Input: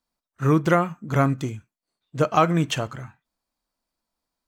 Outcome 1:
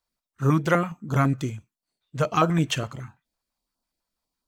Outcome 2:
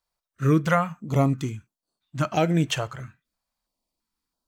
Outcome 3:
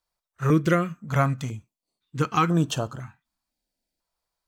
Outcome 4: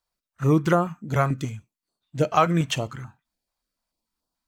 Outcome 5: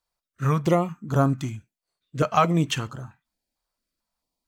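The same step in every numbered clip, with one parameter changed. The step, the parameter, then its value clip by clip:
stepped notch, rate: 12, 3, 2, 6.9, 4.5 Hz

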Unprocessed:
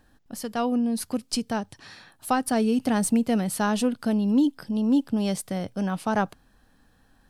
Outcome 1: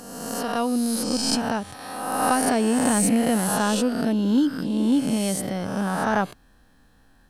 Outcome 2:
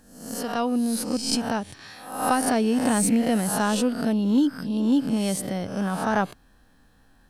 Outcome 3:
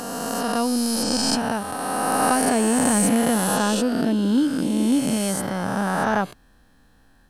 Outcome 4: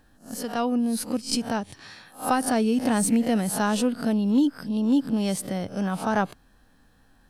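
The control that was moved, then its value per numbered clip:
spectral swells, rising 60 dB in: 1.43, 0.68, 3.04, 0.31 s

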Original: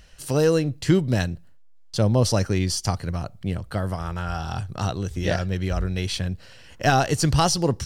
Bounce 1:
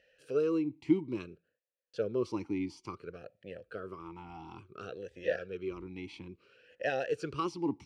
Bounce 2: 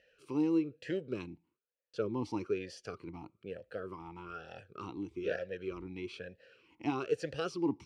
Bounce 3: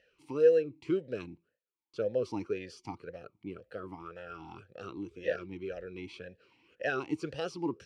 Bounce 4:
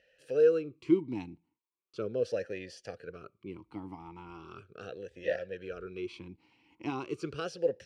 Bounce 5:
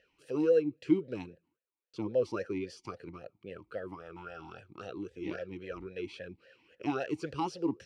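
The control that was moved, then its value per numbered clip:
vowel sweep, rate: 0.58, 1.1, 1.9, 0.38, 3.7 Hz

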